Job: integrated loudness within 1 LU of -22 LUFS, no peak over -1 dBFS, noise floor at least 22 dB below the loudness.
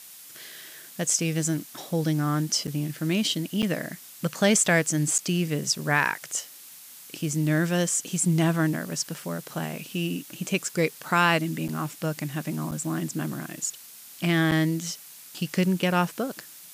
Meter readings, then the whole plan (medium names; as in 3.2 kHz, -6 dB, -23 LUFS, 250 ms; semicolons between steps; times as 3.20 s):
dropouts 6; longest dropout 7.5 ms; noise floor -46 dBFS; noise floor target -48 dBFS; loudness -26.0 LUFS; peak level -8.0 dBFS; loudness target -22.0 LUFS
-> interpolate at 2.67/3.62/5.18/11.68/12.71/14.51 s, 7.5 ms; noise print and reduce 6 dB; trim +4 dB